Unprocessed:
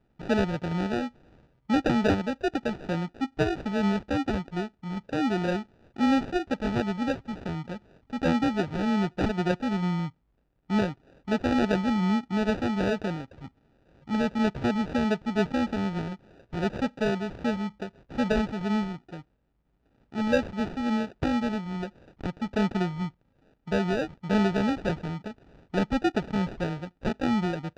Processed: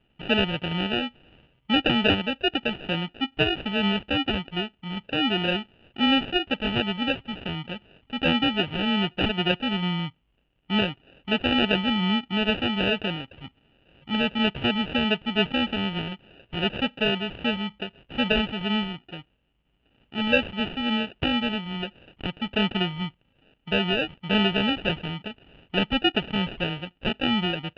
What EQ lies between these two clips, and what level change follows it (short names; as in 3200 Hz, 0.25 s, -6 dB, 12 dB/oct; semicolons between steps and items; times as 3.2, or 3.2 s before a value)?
synth low-pass 2900 Hz, resonance Q 11; 0.0 dB